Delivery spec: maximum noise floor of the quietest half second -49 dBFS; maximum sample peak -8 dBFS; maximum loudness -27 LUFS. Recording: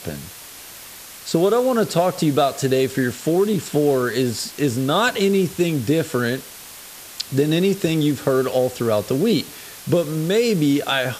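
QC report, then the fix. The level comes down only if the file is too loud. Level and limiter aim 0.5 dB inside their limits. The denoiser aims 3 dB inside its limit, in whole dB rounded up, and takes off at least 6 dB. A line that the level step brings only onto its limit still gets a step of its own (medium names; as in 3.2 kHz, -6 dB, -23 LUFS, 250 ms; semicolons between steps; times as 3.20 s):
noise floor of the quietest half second -39 dBFS: fail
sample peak -5.5 dBFS: fail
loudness -20.0 LUFS: fail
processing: noise reduction 6 dB, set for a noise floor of -39 dBFS; trim -7.5 dB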